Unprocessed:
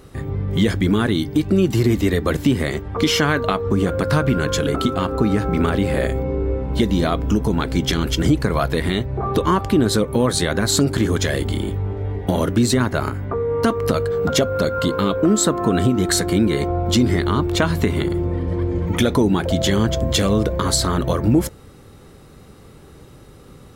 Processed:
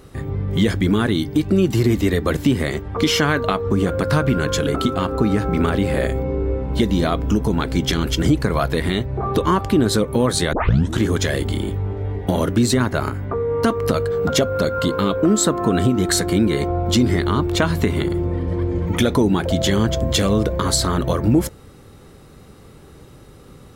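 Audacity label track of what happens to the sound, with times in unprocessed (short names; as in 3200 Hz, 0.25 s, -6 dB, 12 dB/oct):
10.530000	10.530000	tape start 0.47 s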